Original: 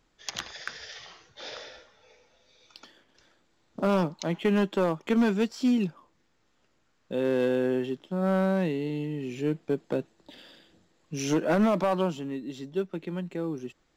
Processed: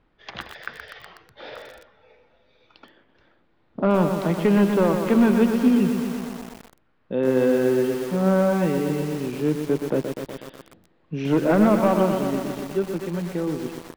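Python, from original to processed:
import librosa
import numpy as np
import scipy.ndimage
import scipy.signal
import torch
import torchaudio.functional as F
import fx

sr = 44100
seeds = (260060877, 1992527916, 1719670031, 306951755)

y = fx.air_absorb(x, sr, metres=390.0)
y = fx.echo_crushed(y, sr, ms=123, feedback_pct=80, bits=7, wet_db=-6.5)
y = F.gain(torch.from_numpy(y), 6.0).numpy()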